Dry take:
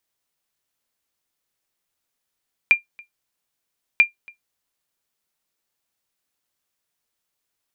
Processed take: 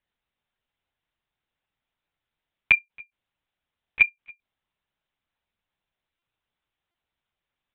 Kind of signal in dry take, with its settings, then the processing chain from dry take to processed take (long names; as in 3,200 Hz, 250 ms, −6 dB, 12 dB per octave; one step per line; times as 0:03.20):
ping with an echo 2,390 Hz, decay 0.13 s, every 1.29 s, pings 2, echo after 0.28 s, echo −28 dB −4.5 dBFS
one-pitch LPC vocoder at 8 kHz 120 Hz
buffer that repeats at 0:06.19/0:06.91, samples 128, times 10